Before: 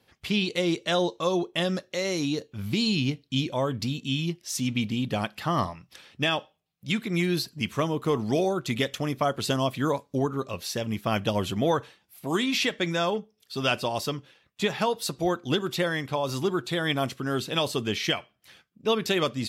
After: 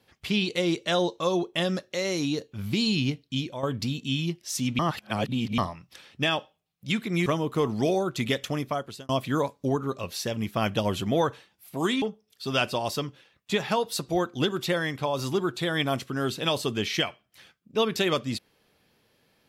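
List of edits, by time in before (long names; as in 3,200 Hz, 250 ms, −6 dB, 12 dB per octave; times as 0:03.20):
0:03.01–0:03.63: fade out equal-power, to −9.5 dB
0:04.79–0:05.58: reverse
0:07.26–0:07.76: remove
0:09.03–0:09.59: fade out
0:12.52–0:13.12: remove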